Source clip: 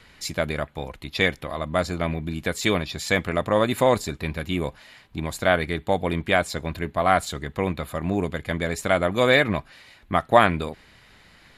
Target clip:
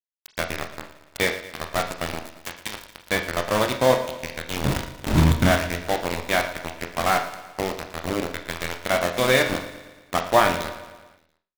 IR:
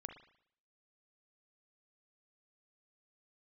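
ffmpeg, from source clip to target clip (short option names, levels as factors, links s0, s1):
-filter_complex "[0:a]aeval=exprs='val(0)+0.5*0.126*sgn(val(0))':c=same,asettb=1/sr,asplit=3[s0][s1][s2];[s0]atrim=end=4.644[s3];[s1]atrim=start=4.64:end=5.51,asetpts=PTS-STARTPTS,afade=t=in:d=0.004:c=qsin,afade=t=out:st=0.866:d=0.004:c=qsin,lowshelf=f=350:t=q:w=1.5:g=8.5[s4];[s2]atrim=start=5.506[s5];[s3][s4]acrossfade=d=0.004:c1=hsin:c2=qsin[s6];[s6][s5]acrossfade=d=0.004:c1=qsin:c2=hsin,bandreject=f=72.63:t=h:w=4,bandreject=f=145.26:t=h:w=4,bandreject=f=217.89:t=h:w=4,asettb=1/sr,asplit=3[s7][s8][s9];[s7]atrim=end=2.244[s10];[s8]atrim=start=2.24:end=2.95,asetpts=PTS-STARTPTS,afade=t=in:d=0.004:c=qsin,afade=t=out:st=0.706:d=0.004:c=qsin,acrossover=split=150|480[s11][s12][s13];[s11]acompressor=threshold=0.00891:ratio=4[s14];[s12]acompressor=threshold=0.0251:ratio=4[s15];[s13]acompressor=threshold=0.0891:ratio=4[s16];[s14][s15][s16]amix=inputs=3:normalize=0[s17];[s9]atrim=start=2.946[s18];[s10][s17]acrossfade=d=0.004:c1=hsin:c2=qsin[s19];[s19][s18]acrossfade=d=0.004:c1=qsin:c2=hsin,aeval=exprs='val(0)*gte(abs(val(0)),0.178)':c=same,aecho=1:1:114|228|342|456|570|684:0.2|0.114|0.0648|0.037|0.0211|0.012[s20];[1:a]atrim=start_sample=2205,asetrate=70560,aresample=44100[s21];[s20][s21]afir=irnorm=-1:irlink=0,volume=2"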